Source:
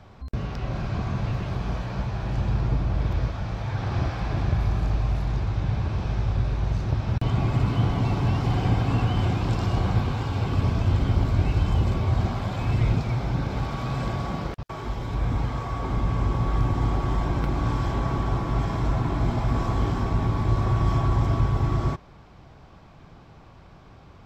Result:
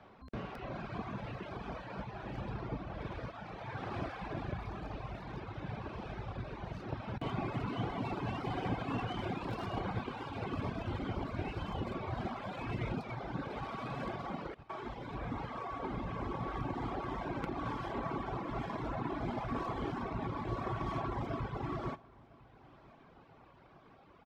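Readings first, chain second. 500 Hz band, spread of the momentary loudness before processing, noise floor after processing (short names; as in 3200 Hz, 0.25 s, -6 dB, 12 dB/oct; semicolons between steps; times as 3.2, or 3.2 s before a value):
-7.5 dB, 7 LU, -60 dBFS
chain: tracing distortion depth 0.16 ms; reverb removal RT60 1.8 s; three-band isolator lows -15 dB, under 190 Hz, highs -14 dB, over 3700 Hz; on a send: feedback echo 1.004 s, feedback 49%, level -23 dB; on the sum: gain -4 dB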